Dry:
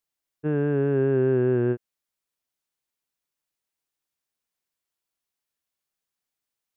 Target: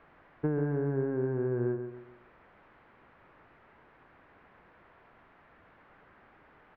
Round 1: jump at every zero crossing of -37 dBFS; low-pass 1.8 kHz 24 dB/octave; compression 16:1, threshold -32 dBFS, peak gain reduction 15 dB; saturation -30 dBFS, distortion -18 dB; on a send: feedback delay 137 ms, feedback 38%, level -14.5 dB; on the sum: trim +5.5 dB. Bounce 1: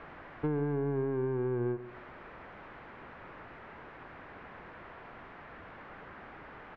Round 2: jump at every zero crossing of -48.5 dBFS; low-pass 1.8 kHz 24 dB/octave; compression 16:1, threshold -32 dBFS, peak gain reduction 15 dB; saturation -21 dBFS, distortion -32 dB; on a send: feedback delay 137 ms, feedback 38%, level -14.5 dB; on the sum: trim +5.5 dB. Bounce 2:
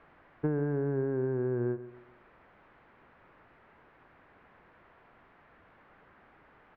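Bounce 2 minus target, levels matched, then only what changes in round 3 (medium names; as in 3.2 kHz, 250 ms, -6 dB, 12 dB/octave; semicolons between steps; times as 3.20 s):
echo-to-direct -6.5 dB
change: feedback delay 137 ms, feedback 38%, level -8 dB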